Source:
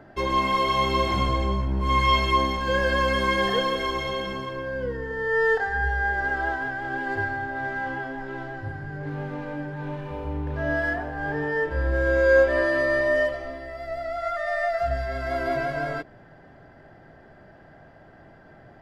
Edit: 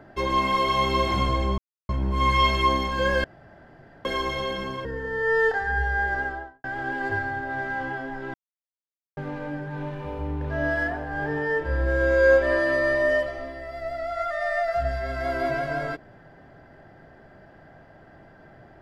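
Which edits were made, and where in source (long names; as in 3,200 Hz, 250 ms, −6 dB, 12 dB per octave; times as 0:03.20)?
0:01.58: splice in silence 0.31 s
0:02.93–0:03.74: fill with room tone
0:04.54–0:04.91: remove
0:06.17–0:06.70: fade out and dull
0:08.40–0:09.23: silence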